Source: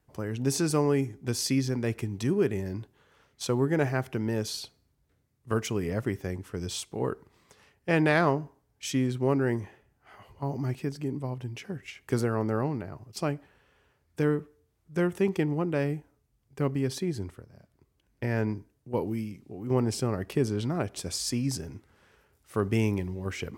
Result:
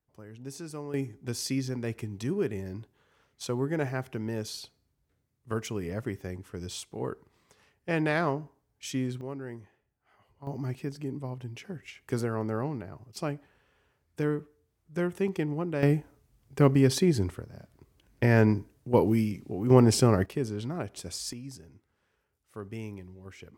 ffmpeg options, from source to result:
-af "asetnsamples=n=441:p=0,asendcmd='0.94 volume volume -4dB;9.21 volume volume -13dB;10.47 volume volume -3dB;15.83 volume volume 7dB;20.26 volume volume -4.5dB;21.33 volume volume -13dB',volume=-14dB"

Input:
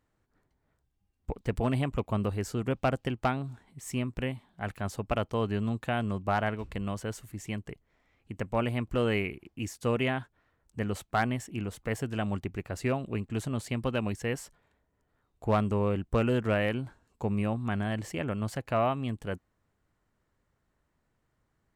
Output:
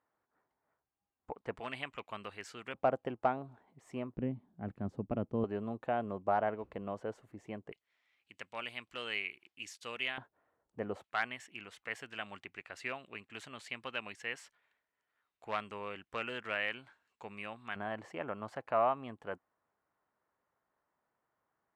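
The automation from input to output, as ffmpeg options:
-af "asetnsamples=n=441:p=0,asendcmd='1.59 bandpass f 2300;2.74 bandpass f 660;4.16 bandpass f 240;5.44 bandpass f 600;7.72 bandpass f 3300;10.18 bandpass f 650;11.04 bandpass f 2300;17.76 bandpass f 940',bandpass=f=960:t=q:w=1.1:csg=0"

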